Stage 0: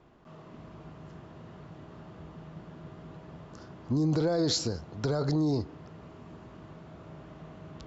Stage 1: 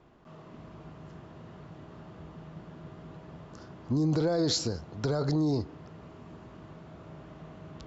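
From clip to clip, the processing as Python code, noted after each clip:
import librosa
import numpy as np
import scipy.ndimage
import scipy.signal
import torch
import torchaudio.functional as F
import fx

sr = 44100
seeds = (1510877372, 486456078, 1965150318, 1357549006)

y = x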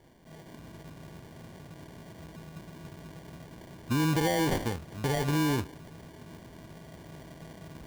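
y = fx.sample_hold(x, sr, seeds[0], rate_hz=1300.0, jitter_pct=0)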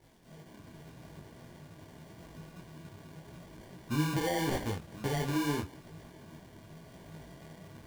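y = fx.dmg_crackle(x, sr, seeds[1], per_s=450.0, level_db=-52.0)
y = fx.detune_double(y, sr, cents=29)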